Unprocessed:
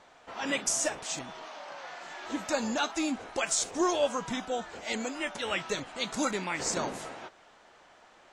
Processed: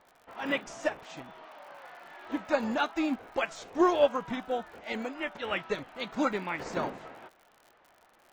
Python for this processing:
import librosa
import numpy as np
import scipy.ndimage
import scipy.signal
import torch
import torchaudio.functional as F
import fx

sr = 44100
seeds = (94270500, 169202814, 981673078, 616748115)

y = scipy.signal.sosfilt(scipy.signal.butter(2, 2700.0, 'lowpass', fs=sr, output='sos'), x)
y = fx.dmg_crackle(y, sr, seeds[0], per_s=67.0, level_db=-41.0)
y = fx.upward_expand(y, sr, threshold_db=-42.0, expansion=1.5)
y = y * librosa.db_to_amplitude(5.0)